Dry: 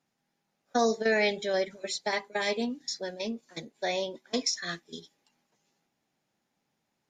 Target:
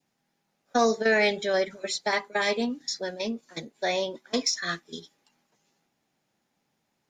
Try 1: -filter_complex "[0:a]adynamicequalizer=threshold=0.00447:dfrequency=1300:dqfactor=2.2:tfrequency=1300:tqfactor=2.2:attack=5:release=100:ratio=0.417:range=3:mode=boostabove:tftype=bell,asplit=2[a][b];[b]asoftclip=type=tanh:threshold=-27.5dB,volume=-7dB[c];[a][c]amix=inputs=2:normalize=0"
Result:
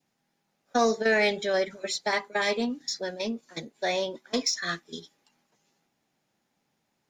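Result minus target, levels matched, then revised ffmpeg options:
soft clip: distortion +7 dB
-filter_complex "[0:a]adynamicequalizer=threshold=0.00447:dfrequency=1300:dqfactor=2.2:tfrequency=1300:tqfactor=2.2:attack=5:release=100:ratio=0.417:range=3:mode=boostabove:tftype=bell,asplit=2[a][b];[b]asoftclip=type=tanh:threshold=-20.5dB,volume=-7dB[c];[a][c]amix=inputs=2:normalize=0"

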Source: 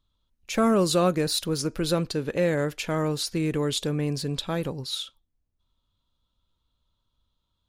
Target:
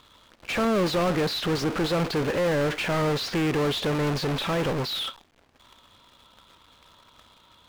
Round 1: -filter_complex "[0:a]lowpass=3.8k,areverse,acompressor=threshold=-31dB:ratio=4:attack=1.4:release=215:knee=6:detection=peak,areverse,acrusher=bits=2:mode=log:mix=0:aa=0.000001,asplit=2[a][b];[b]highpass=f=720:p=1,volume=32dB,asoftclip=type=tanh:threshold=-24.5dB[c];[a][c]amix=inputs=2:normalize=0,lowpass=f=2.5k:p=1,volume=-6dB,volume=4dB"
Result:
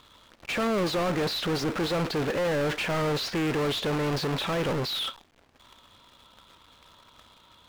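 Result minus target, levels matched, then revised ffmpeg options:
compressor: peak gain reduction +8 dB
-filter_complex "[0:a]lowpass=3.8k,areverse,acompressor=threshold=-20.5dB:ratio=4:attack=1.4:release=215:knee=6:detection=peak,areverse,acrusher=bits=2:mode=log:mix=0:aa=0.000001,asplit=2[a][b];[b]highpass=f=720:p=1,volume=32dB,asoftclip=type=tanh:threshold=-24.5dB[c];[a][c]amix=inputs=2:normalize=0,lowpass=f=2.5k:p=1,volume=-6dB,volume=4dB"

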